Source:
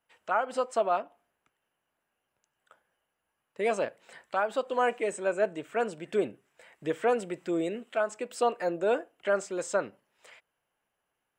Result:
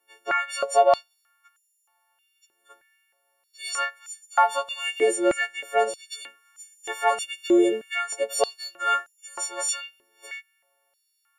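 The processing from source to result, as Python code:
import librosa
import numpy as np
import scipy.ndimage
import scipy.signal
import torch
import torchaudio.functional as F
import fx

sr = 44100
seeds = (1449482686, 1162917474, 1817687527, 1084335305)

y = fx.freq_snap(x, sr, grid_st=4)
y = fx.filter_held_highpass(y, sr, hz=3.2, low_hz=370.0, high_hz=7000.0)
y = y * librosa.db_to_amplitude(1.5)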